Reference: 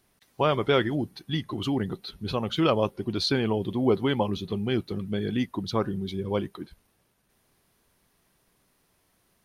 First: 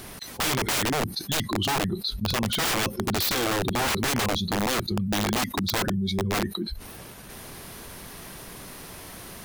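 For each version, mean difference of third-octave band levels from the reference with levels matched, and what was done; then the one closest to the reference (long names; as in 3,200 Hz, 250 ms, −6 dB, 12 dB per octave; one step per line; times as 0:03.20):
13.5 dB: noise reduction from a noise print of the clip's start 16 dB
wrap-around overflow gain 24.5 dB
envelope flattener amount 70%
level +3 dB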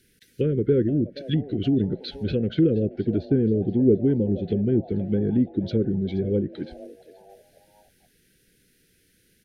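9.0 dB: Chebyshev band-stop filter 500–1,500 Hz, order 4
treble cut that deepens with the level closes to 460 Hz, closed at −24 dBFS
on a send: echo with shifted repeats 475 ms, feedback 37%, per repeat +140 Hz, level −19 dB
on the sum: level +6.5 dB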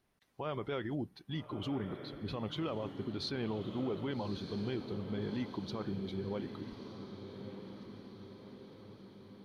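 6.5 dB: high-shelf EQ 5,200 Hz −10.5 dB
brickwall limiter −21 dBFS, peak gain reduction 10 dB
feedback delay with all-pass diffusion 1,225 ms, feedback 58%, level −9 dB
level −8 dB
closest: third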